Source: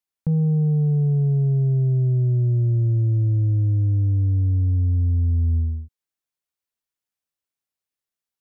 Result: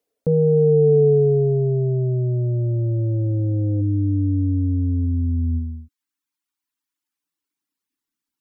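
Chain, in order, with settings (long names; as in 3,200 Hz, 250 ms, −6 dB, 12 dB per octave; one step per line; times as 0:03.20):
reverb reduction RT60 1.5 s
flat-topped bell 540 Hz +10 dB 1 octave, from 0:03.80 −8.5 dB, from 0:05.05 −16 dB
brickwall limiter −25.5 dBFS, peak gain reduction 10.5 dB
hollow resonant body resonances 290/440 Hz, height 16 dB
level +6 dB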